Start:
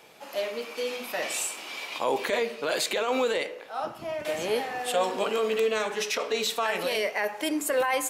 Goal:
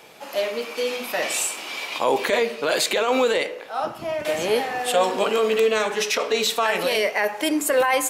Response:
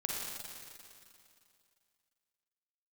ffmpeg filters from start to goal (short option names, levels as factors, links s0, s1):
-af "volume=2"